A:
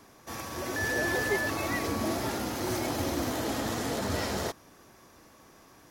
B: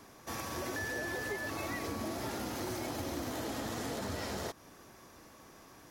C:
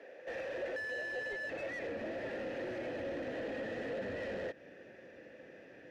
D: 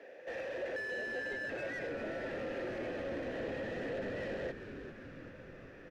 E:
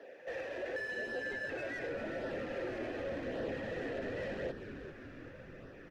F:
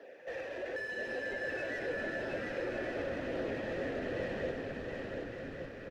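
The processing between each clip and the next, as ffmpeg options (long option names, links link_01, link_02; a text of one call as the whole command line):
ffmpeg -i in.wav -af "acompressor=threshold=-35dB:ratio=6" out.wav
ffmpeg -i in.wav -filter_complex "[0:a]asplit=3[link_01][link_02][link_03];[link_01]bandpass=frequency=530:width_type=q:width=8,volume=0dB[link_04];[link_02]bandpass=frequency=1840:width_type=q:width=8,volume=-6dB[link_05];[link_03]bandpass=frequency=2480:width_type=q:width=8,volume=-9dB[link_06];[link_04][link_05][link_06]amix=inputs=3:normalize=0,asubboost=boost=11:cutoff=170,asplit=2[link_07][link_08];[link_08]highpass=frequency=720:poles=1,volume=21dB,asoftclip=type=tanh:threshold=-36dB[link_09];[link_07][link_09]amix=inputs=2:normalize=0,lowpass=frequency=1000:poles=1,volume=-6dB,volume=7dB" out.wav
ffmpeg -i in.wav -filter_complex "[0:a]asplit=9[link_01][link_02][link_03][link_04][link_05][link_06][link_07][link_08][link_09];[link_02]adelay=395,afreqshift=-130,volume=-10dB[link_10];[link_03]adelay=790,afreqshift=-260,volume=-14.2dB[link_11];[link_04]adelay=1185,afreqshift=-390,volume=-18.3dB[link_12];[link_05]adelay=1580,afreqshift=-520,volume=-22.5dB[link_13];[link_06]adelay=1975,afreqshift=-650,volume=-26.6dB[link_14];[link_07]adelay=2370,afreqshift=-780,volume=-30.8dB[link_15];[link_08]adelay=2765,afreqshift=-910,volume=-34.9dB[link_16];[link_09]adelay=3160,afreqshift=-1040,volume=-39.1dB[link_17];[link_01][link_10][link_11][link_12][link_13][link_14][link_15][link_16][link_17]amix=inputs=9:normalize=0" out.wav
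ffmpeg -i in.wav -af "flanger=delay=0.2:depth=2.8:regen=-49:speed=0.88:shape=sinusoidal,volume=4dB" out.wav
ffmpeg -i in.wav -af "aecho=1:1:720|1152|1411|1567|1660:0.631|0.398|0.251|0.158|0.1" out.wav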